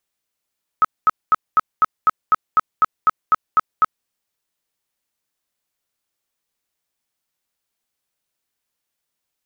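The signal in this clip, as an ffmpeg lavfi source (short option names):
-f lavfi -i "aevalsrc='0.355*sin(2*PI*1280*mod(t,0.25))*lt(mod(t,0.25),33/1280)':d=3.25:s=44100"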